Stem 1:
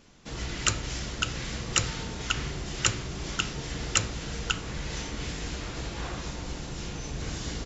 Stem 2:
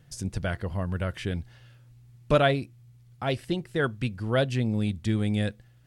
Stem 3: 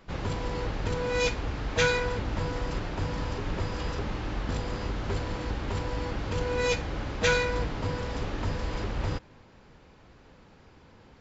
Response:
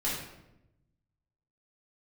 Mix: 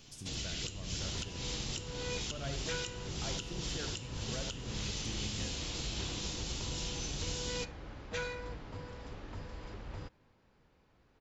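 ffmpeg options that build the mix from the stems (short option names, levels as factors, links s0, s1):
-filter_complex "[0:a]highshelf=f=2300:t=q:w=1.5:g=7,acrossover=split=520|2200[s0][s1][s2];[s0]acompressor=threshold=0.0158:ratio=4[s3];[s1]acompressor=threshold=0.002:ratio=4[s4];[s2]acompressor=threshold=0.0178:ratio=4[s5];[s3][s4][s5]amix=inputs=3:normalize=0,volume=0.531,asplit=2[s6][s7];[s7]volume=0.251[s8];[1:a]acompressor=threshold=0.0178:ratio=2,volume=0.282,asplit=2[s9][s10];[s10]volume=0.376[s11];[2:a]adelay=900,volume=0.2[s12];[3:a]atrim=start_sample=2205[s13];[s8][s13]afir=irnorm=-1:irlink=0[s14];[s11]aecho=0:1:78:1[s15];[s6][s9][s12][s14][s15]amix=inputs=5:normalize=0,alimiter=level_in=1.26:limit=0.0631:level=0:latency=1:release=223,volume=0.794"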